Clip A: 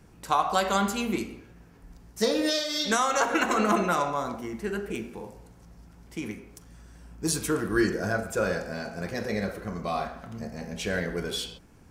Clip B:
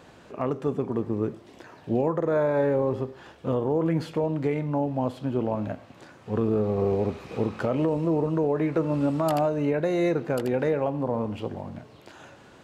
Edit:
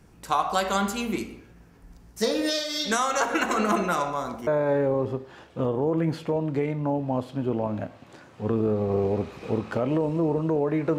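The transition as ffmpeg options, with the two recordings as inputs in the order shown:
ffmpeg -i cue0.wav -i cue1.wav -filter_complex "[0:a]apad=whole_dur=10.98,atrim=end=10.98,atrim=end=4.472[link_01];[1:a]atrim=start=2.348:end=8.86[link_02];[link_01][link_02]acrossfade=duration=0.004:curve1=hsin:curve2=hsin" out.wav

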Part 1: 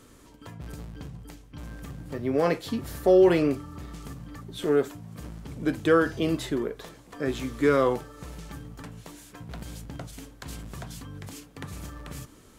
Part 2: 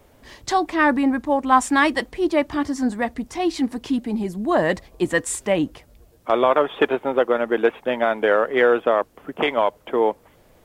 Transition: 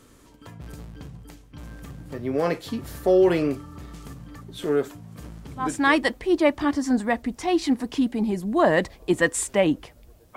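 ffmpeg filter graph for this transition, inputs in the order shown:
ffmpeg -i cue0.wav -i cue1.wav -filter_complex "[0:a]apad=whole_dur=10.36,atrim=end=10.36,atrim=end=5.98,asetpts=PTS-STARTPTS[link_01];[1:a]atrim=start=1.46:end=6.28,asetpts=PTS-STARTPTS[link_02];[link_01][link_02]acrossfade=duration=0.44:curve1=tri:curve2=tri" out.wav

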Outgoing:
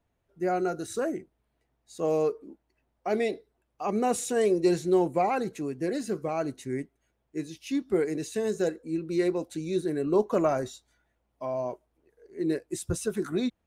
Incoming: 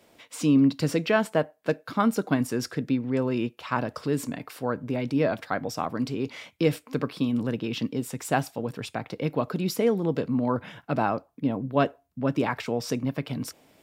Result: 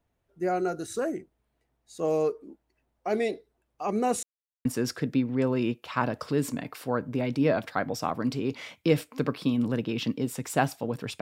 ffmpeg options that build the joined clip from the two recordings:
ffmpeg -i cue0.wav -i cue1.wav -filter_complex "[0:a]apad=whole_dur=11.21,atrim=end=11.21,asplit=2[link_01][link_02];[link_01]atrim=end=4.23,asetpts=PTS-STARTPTS,afade=type=out:start_time=4.226:duration=0.004:curve=hsin[link_03];[link_02]atrim=start=4.23:end=4.65,asetpts=PTS-STARTPTS,volume=0[link_04];[1:a]atrim=start=2.4:end=8.96,asetpts=PTS-STARTPTS,afade=type=in:duration=0.004:curve=hsin[link_05];[link_03][link_04][link_05]concat=n=3:v=0:a=1" out.wav

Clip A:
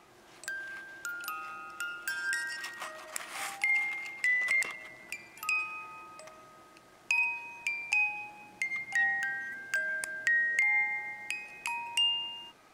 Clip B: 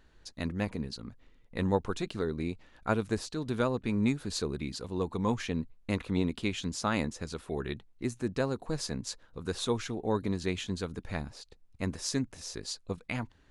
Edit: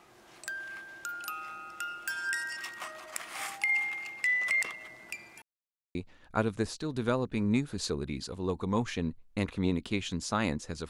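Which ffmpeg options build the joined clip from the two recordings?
ffmpeg -i cue0.wav -i cue1.wav -filter_complex "[0:a]apad=whole_dur=10.89,atrim=end=10.89,asplit=2[link_01][link_02];[link_01]atrim=end=5.42,asetpts=PTS-STARTPTS,afade=type=out:start_time=5.416:duration=0.004:curve=hsin[link_03];[link_02]atrim=start=5.42:end=5.95,asetpts=PTS-STARTPTS,volume=0[link_04];[1:a]atrim=start=2.47:end=7.41,asetpts=PTS-STARTPTS,afade=type=in:duration=0.004:curve=hsin[link_05];[link_03][link_04][link_05]concat=n=3:v=0:a=1" out.wav

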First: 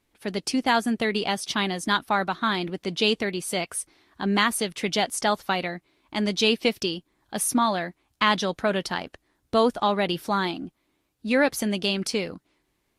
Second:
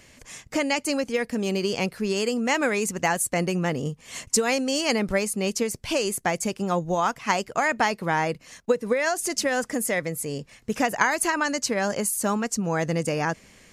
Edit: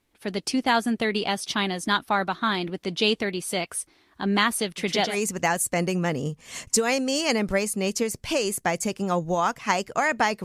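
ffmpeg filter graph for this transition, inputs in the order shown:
ffmpeg -i cue0.wav -i cue1.wav -filter_complex "[0:a]asettb=1/sr,asplit=3[link_01][link_02][link_03];[link_01]atrim=end=4.674[link_04];[link_02]atrim=start=4.67:end=5.18,asetpts=PTS-STARTPTS,afade=type=in:duration=0.004:curve=qsin,afade=type=out:start_time=0.506:duration=0.004:curve=qsin,aecho=1:1:110:0.562,atrim=end_sample=22491[link_05];[link_03]atrim=start=5.176[link_06];[link_04][link_05]acrossfade=duration=0.004:curve1=hsin:curve2=qsin[link_07];[link_07][link_06]acrossfade=duration=0.004:curve1=qsin:curve2=hsin,apad=whole_dur=10.44,atrim=end=10.44,atrim=end=5.18,asetpts=PTS-STARTPTS[link_08];[1:a]atrim=start=2.66:end=8.04,asetpts=PTS-STARTPTS[link_09];[link_08][link_09]acrossfade=duration=0.12:curve1=tri:curve2=tri" out.wav

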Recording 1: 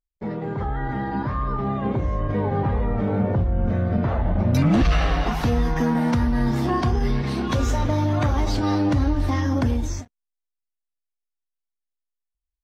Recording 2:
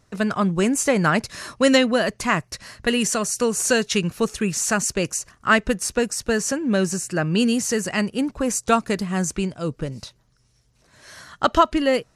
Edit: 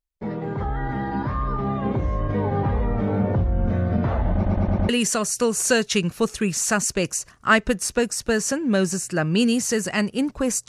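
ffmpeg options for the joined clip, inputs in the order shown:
ffmpeg -i cue0.wav -i cue1.wav -filter_complex "[0:a]apad=whole_dur=10.68,atrim=end=10.68,asplit=5[link_01][link_02][link_03][link_04][link_05];[link_01]atrim=end=4.452[link_06];[link_02]atrim=start=4.338:end=4.452[link_07];[link_03]atrim=start=4.338:end=4.452[link_08];[link_04]atrim=start=4.338:end=4.452[link_09];[link_05]atrim=start=4.338:end=4.452[link_10];[1:a]atrim=start=2.888:end=8.68[link_11];[link_06][link_07]acrossfade=duration=0.004:curve1=hsin:curve2=hsin[link_12];[link_12][link_08]acrossfade=duration=0.004:curve1=hsin:curve2=hsin[link_13];[link_13][link_09]acrossfade=duration=0.004:curve1=hsin:curve2=hsin[link_14];[link_14][link_10]acrossfade=duration=0.004:curve1=hsin:curve2=hsin[link_15];[link_15][link_11]acrossfade=duration=0.004:curve1=hsin:curve2=hsin" out.wav

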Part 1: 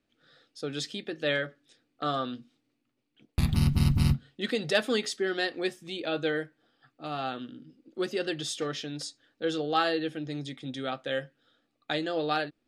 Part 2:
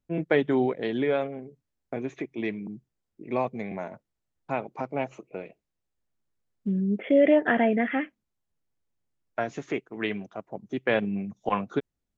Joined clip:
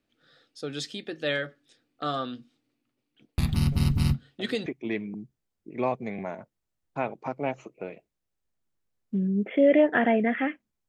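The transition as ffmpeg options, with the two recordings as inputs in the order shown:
ffmpeg -i cue0.wav -i cue1.wav -filter_complex "[1:a]asplit=2[link_01][link_02];[0:a]apad=whole_dur=10.88,atrim=end=10.88,atrim=end=4.662[link_03];[link_02]atrim=start=2.188:end=8.41[link_04];[link_01]atrim=start=1.25:end=2.19,asetpts=PTS-STARTPTS,volume=-12dB,afade=type=in:duration=0.004:curve=hsin,afade=type=out:start_time=0.936:duration=0.004:curve=hsin,adelay=3720[link_05];[link_03][link_04]acrossfade=duration=0.004:curve1=hsin:curve2=hsin[link_06];[link_06][link_05]amix=inputs=2:normalize=0" out.wav

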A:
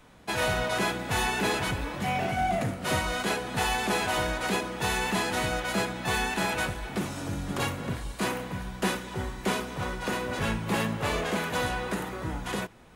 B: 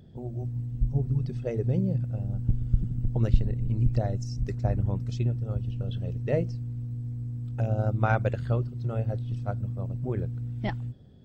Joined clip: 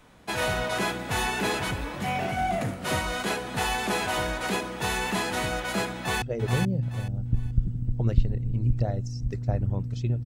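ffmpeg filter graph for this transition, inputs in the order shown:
ffmpeg -i cue0.wav -i cue1.wav -filter_complex "[0:a]apad=whole_dur=10.25,atrim=end=10.25,atrim=end=6.222[link_01];[1:a]atrim=start=1.378:end=5.41[link_02];[link_01][link_02]acrossfade=duration=0.004:curve1=hsin:curve2=hsin,asplit=2[link_03][link_04];[link_04]afade=type=in:start_time=5.96:duration=0.01,afade=type=out:start_time=6.22:duration=0.01,aecho=0:1:430|860|1290:0.630957|0.157739|0.0394348[link_05];[link_03][link_05]amix=inputs=2:normalize=0" out.wav

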